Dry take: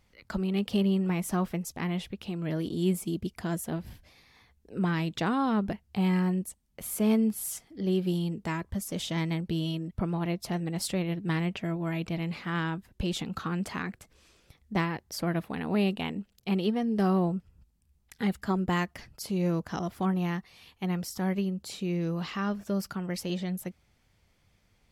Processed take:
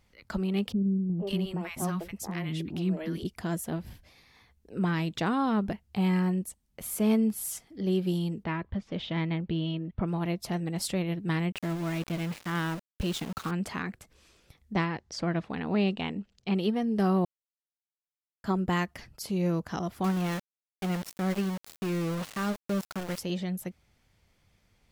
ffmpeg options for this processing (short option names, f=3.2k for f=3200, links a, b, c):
-filter_complex "[0:a]asettb=1/sr,asplit=3[a][b][c];[a]atrim=end=0.724[d];[b]atrim=start=0.72:end=3.25,asetpts=PTS-STARTPTS,afade=t=in:d=0.004:c=qsin,afade=t=out:st=2.526:d=0.004:c=qsin,acrossover=split=330|1100[e][f][g];[f]adelay=470[h];[g]adelay=550[i];[e][h][i]amix=inputs=3:normalize=0,atrim=end_sample=111573[j];[c]atrim=start=3.246[k];[d][j]acrossfade=d=0.004:c1=hsin:c2=qsin[l];[l][k]acrossfade=d=0.004:c1=qsin:c2=hsin,asplit=3[m][n][o];[m]afade=t=out:st=8.43:d=0.02[p];[n]lowpass=f=3.6k:w=0.5412,lowpass=f=3.6k:w=1.3066,afade=t=in:st=8.43:d=0.02,afade=t=out:st=10.06:d=0.02[q];[o]afade=t=in:st=10.06:d=0.02[r];[p][q][r]amix=inputs=3:normalize=0,asettb=1/sr,asplit=3[s][t][u];[s]atrim=end=11.524[v];[t]atrim=start=11.52:end=13.51,asetpts=PTS-STARTPTS,afade=t=in:d=0.004:c=qsin,afade=t=out:st=1.986:d=0.004:c=qsin,aeval=exprs='val(0)*gte(abs(val(0)),0.0133)':c=same[w];[u]atrim=start=13.506[x];[v][w]acrossfade=d=0.004:c1=hsin:c2=qsin[y];[y][x]acrossfade=d=0.004:c1=qsin:c2=hsin,asettb=1/sr,asplit=3[z][aa][ab];[z]atrim=end=14.734[ac];[aa]atrim=start=14.73:end=16.55,asetpts=PTS-STARTPTS,afade=t=in:d=0.004:c=qsin,afade=t=out:st=1.816:d=0.004:c=qsin,lowpass=f=6.9k:w=0.5412,lowpass=f=6.9k:w=1.3066[ad];[ab]atrim=start=16.546[ae];[ac][ad]acrossfade=d=0.004:c1=hsin:c2=qsin[af];[af][ae]acrossfade=d=0.004:c1=qsin:c2=hsin,asettb=1/sr,asplit=3[ag][ah][ai];[ag]atrim=end=20.044[aj];[ah]atrim=start=20.04:end=23.19,asetpts=PTS-STARTPTS,afade=t=in:d=0.004:c=qsin,afade=t=out:st=3.146:d=0.004:c=qsin,aeval=exprs='val(0)*gte(abs(val(0)),0.0224)':c=same[ak];[ai]atrim=start=23.186[al];[aj][ak]acrossfade=d=0.004:c1=hsin:c2=qsin[am];[am][al]acrossfade=d=0.004:c1=qsin:c2=hsin,asplit=3[an][ao][ap];[an]atrim=end=17.25,asetpts=PTS-STARTPTS,afade=t=out:st=17.246:d=0.004:c=hsin[aq];[ao]atrim=start=17.25:end=18.44,asetpts=PTS-STARTPTS,volume=0[ar];[ap]atrim=start=18.44,asetpts=PTS-STARTPTS,afade=t=in:d=0.004:c=hsin[as];[aq][ar][as]concat=n=3:v=0:a=1"